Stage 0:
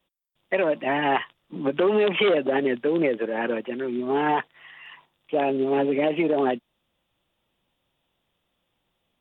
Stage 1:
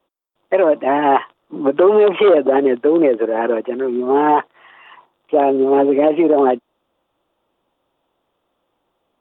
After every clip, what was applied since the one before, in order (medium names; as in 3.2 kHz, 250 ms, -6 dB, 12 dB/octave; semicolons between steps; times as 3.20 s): high-order bell 610 Hz +11 dB 2.7 oct; trim -1.5 dB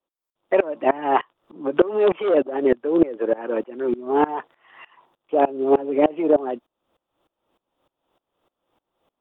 in parallel at -2 dB: compression, threshold -21 dBFS, peak gain reduction 13 dB; on the sum: sawtooth tremolo in dB swelling 3.3 Hz, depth 23 dB; trim -1 dB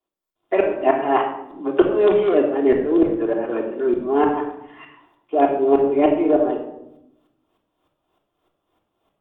simulated room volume 2400 m³, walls furnished, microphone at 3.2 m; trim -1.5 dB